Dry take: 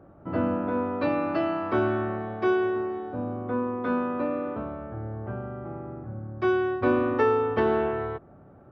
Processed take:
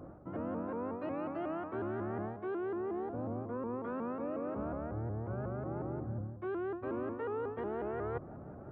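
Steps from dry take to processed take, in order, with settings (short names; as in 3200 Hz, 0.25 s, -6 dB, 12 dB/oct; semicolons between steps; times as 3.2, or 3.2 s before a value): high shelf 3400 Hz -10 dB; notches 50/100/150/200/250 Hz; reverse; compressor 12:1, threshold -39 dBFS, peak gain reduction 21 dB; reverse; air absorption 360 m; shaped vibrato saw up 5.5 Hz, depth 160 cents; gain +5 dB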